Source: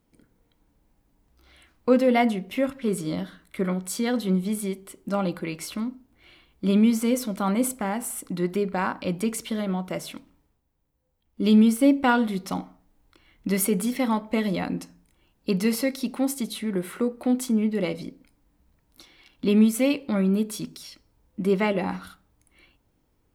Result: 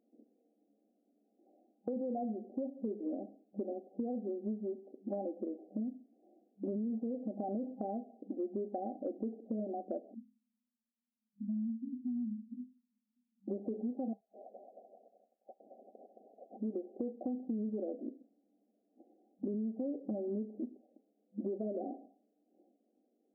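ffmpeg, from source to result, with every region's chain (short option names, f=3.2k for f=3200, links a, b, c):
-filter_complex "[0:a]asettb=1/sr,asplit=3[a][b][c];[a]atrim=end=10.144[d];[b]atrim=start=10.14:end=13.48,asetpts=PTS-STARTPTS,afade=t=in:d=0.004:c=qsin,afade=t=out:st=3.336:d=0.004:c=qsin,asuperpass=centerf=230:order=8:qfactor=5.2,acompressor=threshold=-27dB:ratio=4:attack=3.2:release=140:knee=1:detection=peak[e];[c]atrim=start=13.476[f];[d][e]acrossfade=d=0.004:c1=hsin:c2=qsin[g];[g][f]acrossfade=d=0.004:c1=qsin:c2=hsin,asettb=1/sr,asplit=3[h][i][j];[h]atrim=end=14.134[k];[i]atrim=start=14.13:end=16.57,asetpts=PTS-STARTPTS,afade=t=in:d=0.004:c=qsin,afade=t=out:st=2.436:d=0.004:c=qsin,lowpass=f=3.3k:t=q:w=0.5098,lowpass=f=3.3k:t=q:w=0.6013,lowpass=f=3.3k:t=q:w=0.9,lowpass=f=3.3k:t=q:w=2.563,afreqshift=-3900,aecho=1:1:220|385|508.8|601.6|671.2:0.631|0.398|0.251|0.158|0.1,atrim=end_sample=107604[l];[j]atrim=start=16.566[m];[k][l]acrossfade=d=0.004:c1=hsin:c2=qsin[n];[n][m]acrossfade=d=0.004:c1=qsin:c2=hsin,afftfilt=real='re*between(b*sr/4096,200,800)':imag='im*between(b*sr/4096,200,800)':win_size=4096:overlap=0.75,alimiter=limit=-19.5dB:level=0:latency=1:release=30,acompressor=threshold=-32dB:ratio=6,volume=-2.5dB"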